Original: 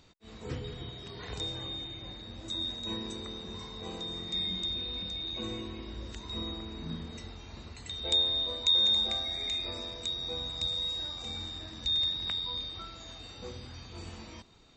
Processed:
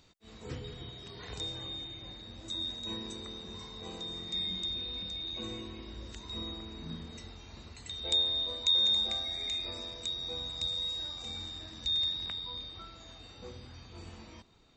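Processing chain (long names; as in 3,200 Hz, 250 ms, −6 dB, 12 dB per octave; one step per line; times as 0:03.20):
high-shelf EQ 3,800 Hz +4 dB, from 0:12.26 −3.5 dB
level −3.5 dB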